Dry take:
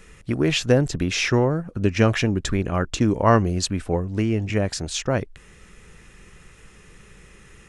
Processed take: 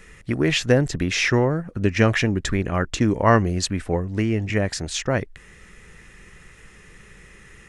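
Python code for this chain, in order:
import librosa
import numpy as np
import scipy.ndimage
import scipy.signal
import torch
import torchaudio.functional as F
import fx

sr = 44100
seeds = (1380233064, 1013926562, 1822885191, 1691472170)

y = fx.peak_eq(x, sr, hz=1900.0, db=6.5, octaves=0.42)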